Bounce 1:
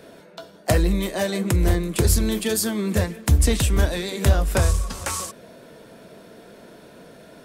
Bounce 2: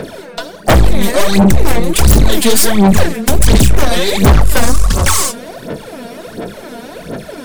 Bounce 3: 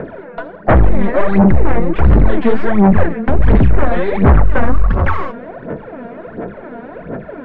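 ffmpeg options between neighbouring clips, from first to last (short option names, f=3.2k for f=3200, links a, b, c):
-af "aeval=exprs='0.422*(cos(1*acos(clip(val(0)/0.422,-1,1)))-cos(1*PI/2))+0.15*(cos(5*acos(clip(val(0)/0.422,-1,1)))-cos(5*PI/2))+0.133*(cos(8*acos(clip(val(0)/0.422,-1,1)))-cos(8*PI/2))':c=same,aphaser=in_gain=1:out_gain=1:delay=4.3:decay=0.73:speed=1.4:type=sinusoidal,acontrast=47,volume=-1dB"
-af "lowpass=f=1.9k:w=0.5412,lowpass=f=1.9k:w=1.3066,volume=-1dB"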